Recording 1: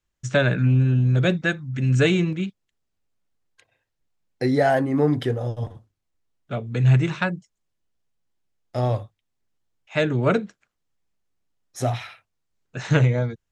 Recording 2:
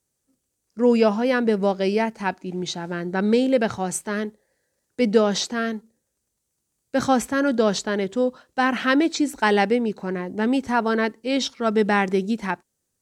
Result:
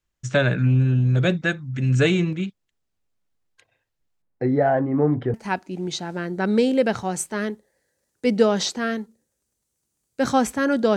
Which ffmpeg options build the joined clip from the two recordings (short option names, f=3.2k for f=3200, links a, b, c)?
-filter_complex "[0:a]asettb=1/sr,asplit=3[a][b][c];[a]atrim=end=4.224[d];[b]atrim=start=4.22:end=5.34,asetpts=PTS-STARTPTS,afade=t=in:d=0.004:c=qsin,afade=t=out:st=1.116:d=0.004:c=qsin,lowpass=1.4k[e];[c]atrim=start=5.336[f];[d][e]acrossfade=d=0.004:c1=hsin:c2=qsin[g];[g][f]acrossfade=d=0.004:c1=qsin:c2=hsin,apad=whole_dur=10.96,atrim=end=10.96,atrim=end=5.342[h];[1:a]atrim=start=2.088:end=7.71[i];[h][i]acrossfade=d=0.004:c1=hsin:c2=hsin"